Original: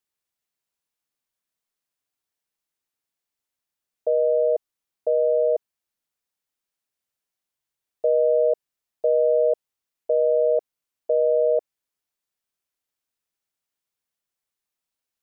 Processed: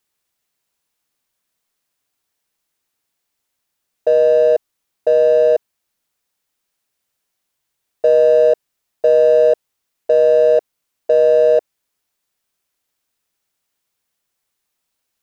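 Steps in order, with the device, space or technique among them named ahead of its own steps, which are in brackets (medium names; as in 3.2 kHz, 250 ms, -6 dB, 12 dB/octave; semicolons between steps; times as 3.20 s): parallel distortion (in parallel at -6 dB: hard clipper -30 dBFS, distortion -5 dB); on the sum: trim +7 dB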